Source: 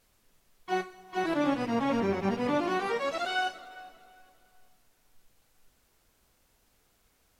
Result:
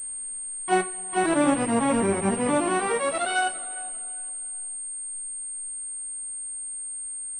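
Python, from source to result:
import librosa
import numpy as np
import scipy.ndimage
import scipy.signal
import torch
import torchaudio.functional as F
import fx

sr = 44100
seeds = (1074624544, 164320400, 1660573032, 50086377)

y = fx.rider(x, sr, range_db=10, speed_s=2.0)
y = fx.pwm(y, sr, carrier_hz=8600.0)
y = F.gain(torch.from_numpy(y), 5.5).numpy()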